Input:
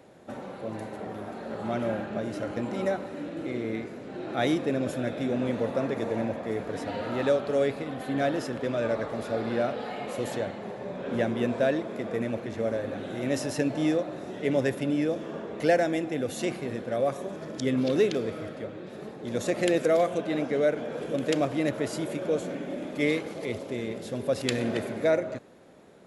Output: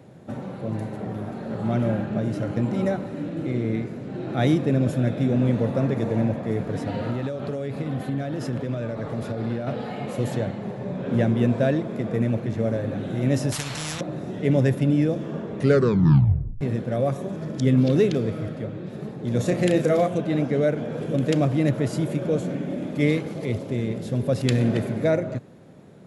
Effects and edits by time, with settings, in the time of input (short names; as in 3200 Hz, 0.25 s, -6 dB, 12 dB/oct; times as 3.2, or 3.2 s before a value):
7.1–9.67 compressor 12:1, threshold -29 dBFS
13.52–14.01 spectral compressor 10:1
15.55 tape stop 1.06 s
19.35–20.08 doubler 33 ms -7 dB
whole clip: bell 130 Hz +15 dB 1.7 oct